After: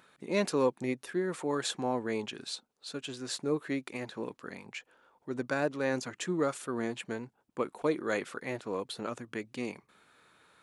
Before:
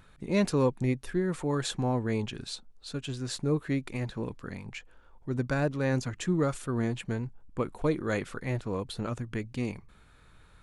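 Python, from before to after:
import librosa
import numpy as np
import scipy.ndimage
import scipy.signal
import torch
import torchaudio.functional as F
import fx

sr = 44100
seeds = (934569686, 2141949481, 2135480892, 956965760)

y = scipy.signal.sosfilt(scipy.signal.butter(2, 290.0, 'highpass', fs=sr, output='sos'), x)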